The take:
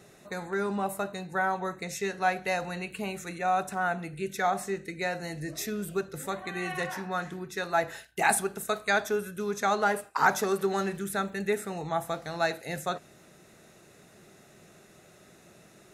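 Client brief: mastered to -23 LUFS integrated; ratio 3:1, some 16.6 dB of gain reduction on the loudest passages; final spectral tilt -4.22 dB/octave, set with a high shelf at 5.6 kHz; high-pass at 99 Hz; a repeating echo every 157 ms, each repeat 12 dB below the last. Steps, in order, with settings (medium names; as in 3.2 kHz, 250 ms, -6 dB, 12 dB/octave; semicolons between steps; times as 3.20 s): high-pass 99 Hz; treble shelf 5.6 kHz +4 dB; compression 3:1, threshold -41 dBFS; feedback delay 157 ms, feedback 25%, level -12 dB; trim +18 dB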